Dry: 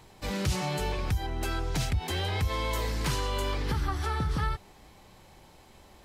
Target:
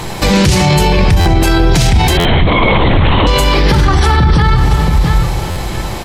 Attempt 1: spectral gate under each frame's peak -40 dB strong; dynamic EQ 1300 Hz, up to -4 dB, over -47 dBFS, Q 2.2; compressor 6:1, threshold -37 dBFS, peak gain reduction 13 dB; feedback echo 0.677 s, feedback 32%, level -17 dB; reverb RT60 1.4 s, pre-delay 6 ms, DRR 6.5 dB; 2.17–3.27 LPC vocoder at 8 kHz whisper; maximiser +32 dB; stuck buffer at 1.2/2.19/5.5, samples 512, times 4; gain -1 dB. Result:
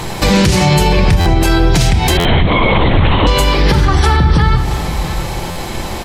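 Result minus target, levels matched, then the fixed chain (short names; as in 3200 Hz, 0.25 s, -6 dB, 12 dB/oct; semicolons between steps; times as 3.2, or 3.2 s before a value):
compressor: peak gain reduction +13 dB
spectral gate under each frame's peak -40 dB strong; dynamic EQ 1300 Hz, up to -4 dB, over -47 dBFS, Q 2.2; feedback echo 0.677 s, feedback 32%, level -17 dB; reverb RT60 1.4 s, pre-delay 6 ms, DRR 6.5 dB; 2.17–3.27 LPC vocoder at 8 kHz whisper; maximiser +32 dB; stuck buffer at 1.2/2.19/5.5, samples 512, times 4; gain -1 dB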